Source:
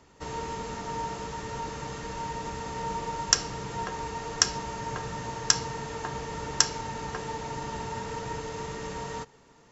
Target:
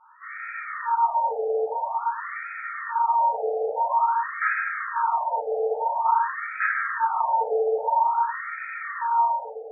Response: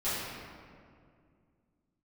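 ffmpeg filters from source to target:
-filter_complex "[1:a]atrim=start_sample=2205[a];[0:a][a]afir=irnorm=-1:irlink=0,afftfilt=real='re*between(b*sr/1024,580*pow(1800/580,0.5+0.5*sin(2*PI*0.49*pts/sr))/1.41,580*pow(1800/580,0.5+0.5*sin(2*PI*0.49*pts/sr))*1.41)':imag='im*between(b*sr/1024,580*pow(1800/580,0.5+0.5*sin(2*PI*0.49*pts/sr))/1.41,580*pow(1800/580,0.5+0.5*sin(2*PI*0.49*pts/sr))*1.41)':win_size=1024:overlap=0.75,volume=5.5dB"

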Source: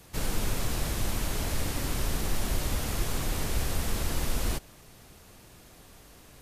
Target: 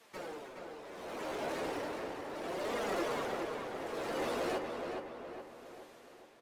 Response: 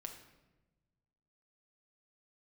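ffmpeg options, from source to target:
-filter_complex "[0:a]afftdn=nr=15:nf=-38,highpass=320,adynamicequalizer=threshold=0.00178:dfrequency=470:dqfactor=0.88:tfrequency=470:tqfactor=0.88:attack=5:release=100:ratio=0.375:range=3:mode=boostabove:tftype=bell,asplit=2[a][b];[b]acrusher=samples=27:mix=1:aa=0.000001,volume=-11dB[c];[a][c]amix=inputs=2:normalize=0,acompressor=threshold=-54dB:ratio=1.5,asplit=2[d][e];[e]highpass=f=720:p=1,volume=23dB,asoftclip=type=tanh:threshold=-31dB[f];[d][f]amix=inputs=2:normalize=0,lowpass=f=2.2k:p=1,volume=-6dB,tremolo=f=0.68:d=0.77,flanger=delay=4.1:depth=9.3:regen=44:speed=0.36:shape=triangular,dynaudnorm=f=430:g=7:m=6.5dB,asplit=2[g][h];[h]adelay=418,lowpass=f=3.2k:p=1,volume=-4.5dB,asplit=2[i][j];[j]adelay=418,lowpass=f=3.2k:p=1,volume=0.51,asplit=2[k][l];[l]adelay=418,lowpass=f=3.2k:p=1,volume=0.51,asplit=2[m][n];[n]adelay=418,lowpass=f=3.2k:p=1,volume=0.51,asplit=2[o][p];[p]adelay=418,lowpass=f=3.2k:p=1,volume=0.51,asplit=2[q][r];[r]adelay=418,lowpass=f=3.2k:p=1,volume=0.51,asplit=2[s][t];[t]adelay=418,lowpass=f=3.2k:p=1,volume=0.51[u];[g][i][k][m][o][q][s][u]amix=inputs=8:normalize=0,volume=1dB"

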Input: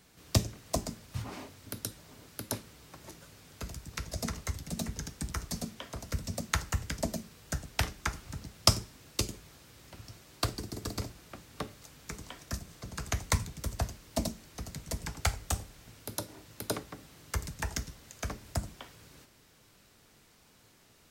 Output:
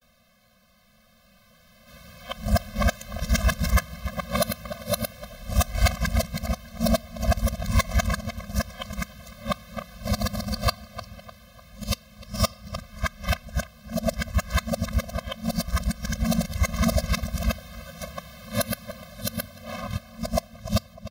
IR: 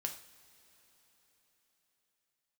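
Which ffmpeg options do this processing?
-filter_complex "[0:a]areverse,dynaudnorm=f=220:g=17:m=10.5dB,asplit=2[a][b];[b]adelay=301,lowpass=f=2.9k:p=1,volume=-15dB,asplit=2[c][d];[d]adelay=301,lowpass=f=2.9k:p=1,volume=0.55,asplit=2[e][f];[f]adelay=301,lowpass=f=2.9k:p=1,volume=0.55,asplit=2[g][h];[h]adelay=301,lowpass=f=2.9k:p=1,volume=0.55,asplit=2[i][j];[j]adelay=301,lowpass=f=2.9k:p=1,volume=0.55[k];[a][c][e][g][i][k]amix=inputs=6:normalize=0,asplit=2[l][m];[1:a]atrim=start_sample=2205,asetrate=38367,aresample=44100[n];[m][n]afir=irnorm=-1:irlink=0,volume=-18dB[o];[l][o]amix=inputs=2:normalize=0,acontrast=75,equalizer=f=125:t=o:w=1:g=-10,equalizer=f=250:t=o:w=1:g=6,equalizer=f=8k:t=o:w=1:g=-9,asoftclip=type=tanh:threshold=-13dB,asplit=2[p][q];[q]acrusher=bits=3:mix=0:aa=0.5,volume=-3dB[r];[p][r]amix=inputs=2:normalize=0,afftfilt=real='re*eq(mod(floor(b*sr/1024/250),2),0)':imag='im*eq(mod(floor(b*sr/1024/250),2),0)':win_size=1024:overlap=0.75,volume=-2.5dB"

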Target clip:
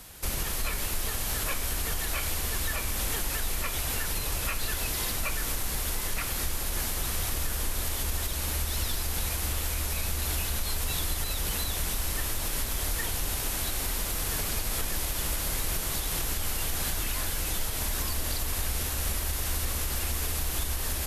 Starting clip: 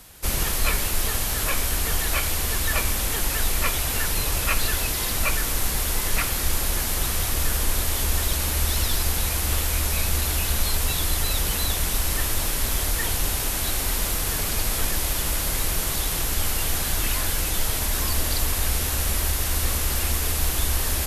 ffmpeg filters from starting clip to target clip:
-af "alimiter=limit=-19.5dB:level=0:latency=1:release=300"

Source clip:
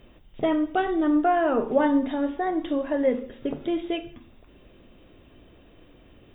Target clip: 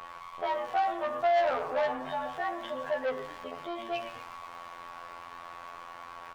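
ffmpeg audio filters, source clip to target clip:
-filter_complex "[0:a]acrossover=split=470[a][b];[a]acompressor=mode=upward:threshold=-31dB:ratio=2.5[c];[c][b]amix=inputs=2:normalize=0,aeval=exprs='val(0)+0.00562*sin(2*PI*1100*n/s)':c=same,aeval=exprs='val(0)*gte(abs(val(0)),0.00944)':c=same,afftfilt=real='hypot(re,im)*cos(PI*b)':imag='0':win_size=2048:overlap=0.75,asplit=6[d][e][f][g][h][i];[e]adelay=121,afreqshift=-110,volume=-12.5dB[j];[f]adelay=242,afreqshift=-220,volume=-18.3dB[k];[g]adelay=363,afreqshift=-330,volume=-24.2dB[l];[h]adelay=484,afreqshift=-440,volume=-30dB[m];[i]adelay=605,afreqshift=-550,volume=-35.9dB[n];[d][j][k][l][m][n]amix=inputs=6:normalize=0,asplit=2[o][p];[p]highpass=f=720:p=1,volume=12dB,asoftclip=type=tanh:threshold=-11.5dB[q];[o][q]amix=inputs=2:normalize=0,lowpass=f=1.5k:p=1,volume=-6dB,asoftclip=type=tanh:threshold=-22.5dB,lowshelf=f=480:t=q:w=1.5:g=-11,bandreject=f=283.3:t=h:w=4,bandreject=f=566.6:t=h:w=4,bandreject=f=849.9:t=h:w=4,bandreject=f=1.1332k:t=h:w=4,bandreject=f=1.4165k:t=h:w=4,bandreject=f=1.6998k:t=h:w=4,bandreject=f=1.9831k:t=h:w=4,bandreject=f=2.2664k:t=h:w=4,bandreject=f=2.5497k:t=h:w=4,bandreject=f=2.833k:t=h:w=4,bandreject=f=3.1163k:t=h:w=4,bandreject=f=3.3996k:t=h:w=4,bandreject=f=3.6829k:t=h:w=4,bandreject=f=3.9662k:t=h:w=4,bandreject=f=4.2495k:t=h:w=4,bandreject=f=4.5328k:t=h:w=4,bandreject=f=4.8161k:t=h:w=4,bandreject=f=5.0994k:t=h:w=4,bandreject=f=5.3827k:t=h:w=4,bandreject=f=5.666k:t=h:w=4,bandreject=f=5.9493k:t=h:w=4,bandreject=f=6.2326k:t=h:w=4,bandreject=f=6.5159k:t=h:w=4,bandreject=f=6.7992k:t=h:w=4,bandreject=f=7.0825k:t=h:w=4,bandreject=f=7.3658k:t=h:w=4,adynamicequalizer=threshold=0.00447:dfrequency=3000:dqfactor=0.7:tfrequency=3000:tqfactor=0.7:attack=5:release=100:ratio=0.375:range=3:mode=boostabove:tftype=highshelf"

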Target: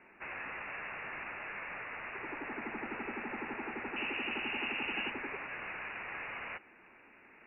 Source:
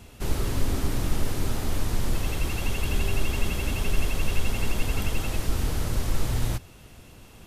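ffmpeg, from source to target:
-af "asetnsamples=n=441:p=0,asendcmd='3.96 highpass f 270;5.1 highpass f 750',highpass=880,lowpass=f=2.6k:t=q:w=0.5098,lowpass=f=2.6k:t=q:w=0.6013,lowpass=f=2.6k:t=q:w=0.9,lowpass=f=2.6k:t=q:w=2.563,afreqshift=-3000"

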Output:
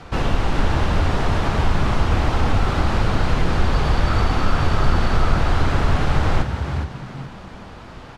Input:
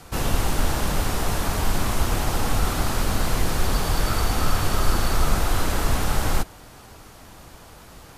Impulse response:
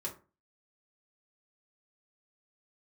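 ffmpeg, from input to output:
-filter_complex "[0:a]lowpass=3.4k,asplit=2[a][b];[b]acompressor=threshold=-25dB:ratio=6,volume=0dB[c];[a][c]amix=inputs=2:normalize=0,asplit=5[d][e][f][g][h];[e]adelay=415,afreqshift=59,volume=-7.5dB[i];[f]adelay=830,afreqshift=118,volume=-17.4dB[j];[g]adelay=1245,afreqshift=177,volume=-27.3dB[k];[h]adelay=1660,afreqshift=236,volume=-37.2dB[l];[d][i][j][k][l]amix=inputs=5:normalize=0"

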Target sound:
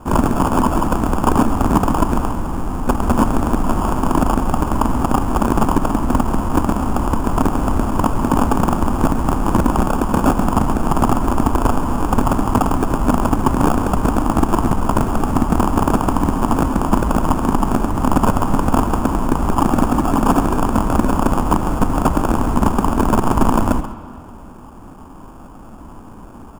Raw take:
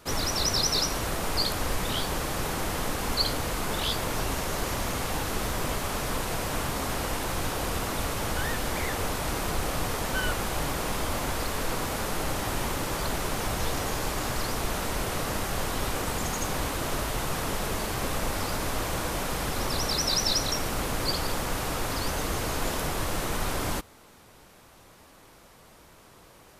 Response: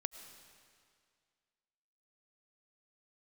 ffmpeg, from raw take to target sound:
-filter_complex "[0:a]asettb=1/sr,asplit=3[a][b][c];[a]atrim=end=2.304[d];[b]atrim=start=2.3:end=2.87,asetpts=PTS-STARTPTS,afade=t=in:d=0.004:c=qsin,afade=t=out:st=0.566:d=0.004:c=qsin,acrossover=split=300|650[e][f][g];[e]acompressor=threshold=-35dB:ratio=4[h];[f]acompressor=threshold=-43dB:ratio=4[i];[g]acompressor=threshold=-36dB:ratio=4[j];[h][i][j]amix=inputs=3:normalize=0[k];[c]atrim=start=2.866[l];[d][k]acrossfade=d=0.004:c1=hsin:c2=qsin[m];[m][l]acrossfade=d=0.004:c1=qsin:c2=hsin,lowshelf=f=130:g=11.5,asplit=2[n][o];[o]acompressor=threshold=-41dB:ratio=4,volume=1.5dB[p];[n][p]amix=inputs=2:normalize=0,asplit=3[q][r][s];[q]afade=t=out:st=7.26:d=0.02[t];[r]lowpass=f=12k:w=0.5412,lowpass=f=12k:w=1.3066,afade=t=in:st=7.26:d=0.02,afade=t=out:st=7.76:d=0.02[u];[s]afade=t=in:st=7.76:d=0.02[v];[t][u][v]amix=inputs=3:normalize=0,aeval=exprs='(mod(5.01*val(0)+1,2)-1)/5.01':c=same,asplit=2[w][x];[x]adelay=134.1,volume=-12dB,highshelf=f=4k:g=-3.02[y];[w][y]amix=inputs=2:normalize=0,acrusher=samples=22:mix=1:aa=0.000001,equalizer=f=125:t=o:w=1:g=-4,equalizer=f=250:t=o:w=1:g=10,equalizer=f=500:t=o:w=1:g=-7,equalizer=f=1k:t=o:w=1:g=7,equalizer=f=2k:t=o:w=1:g=-6,equalizer=f=4k:t=o:w=1:g=-7,equalizer=f=8k:t=o:w=1:g=6,asplit=2[z][aa];[1:a]atrim=start_sample=2205,lowpass=2.6k[ab];[aa][ab]afir=irnorm=-1:irlink=0,volume=3dB[ac];[z][ac]amix=inputs=2:normalize=0,volume=-2.5dB"

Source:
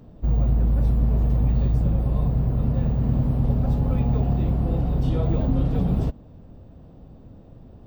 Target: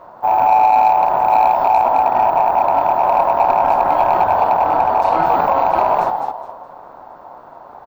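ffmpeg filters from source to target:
-filter_complex "[0:a]highpass=41,asplit=5[a][b][c][d][e];[b]adelay=209,afreqshift=-110,volume=-6dB[f];[c]adelay=418,afreqshift=-220,volume=-15.9dB[g];[d]adelay=627,afreqshift=-330,volume=-25.8dB[h];[e]adelay=836,afreqshift=-440,volume=-35.7dB[i];[a][f][g][h][i]amix=inputs=5:normalize=0,aeval=exprs='val(0)*sin(2*PI*810*n/s)':c=same,asplit=2[j][k];[k]asoftclip=type=hard:threshold=-17.5dB,volume=-5dB[l];[j][l]amix=inputs=2:normalize=0,acontrast=50"

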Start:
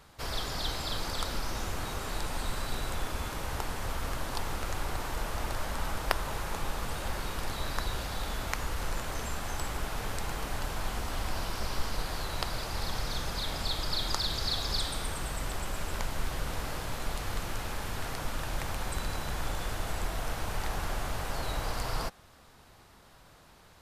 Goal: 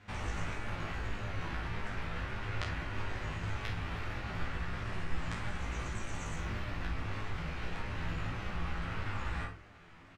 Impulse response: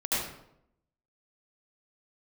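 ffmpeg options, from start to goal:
-filter_complex "[0:a]lowpass=1.7k,acompressor=threshold=-38dB:ratio=2,aeval=exprs='0.562*(cos(1*acos(clip(val(0)/0.562,-1,1)))-cos(1*PI/2))+0.0141*(cos(2*acos(clip(val(0)/0.562,-1,1)))-cos(2*PI/2))+0.0891*(cos(3*acos(clip(val(0)/0.562,-1,1)))-cos(3*PI/2))+0.00316*(cos(4*acos(clip(val(0)/0.562,-1,1)))-cos(4*PI/2))+0.0501*(cos(6*acos(clip(val(0)/0.562,-1,1)))-cos(6*PI/2))':c=same,asetrate=33038,aresample=44100,atempo=1.33484,flanger=delay=22.5:depth=6.3:speed=0.71,asplit=2[a][b];[b]adelay=43,volume=-3dB[c];[a][c]amix=inputs=2:normalize=0,asplit=2[d][e];[1:a]atrim=start_sample=2205[f];[e][f]afir=irnorm=-1:irlink=0,volume=-11dB[g];[d][g]amix=inputs=2:normalize=0,asetrate=103194,aresample=44100,volume=5dB"

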